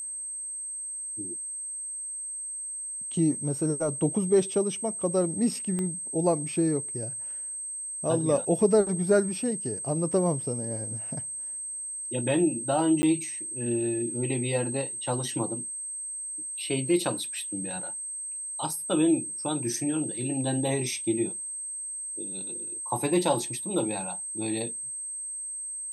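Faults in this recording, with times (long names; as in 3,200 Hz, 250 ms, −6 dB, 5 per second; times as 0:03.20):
whistle 8,300 Hz −33 dBFS
0:05.79: click −20 dBFS
0:13.02–0:13.03: drop-out 10 ms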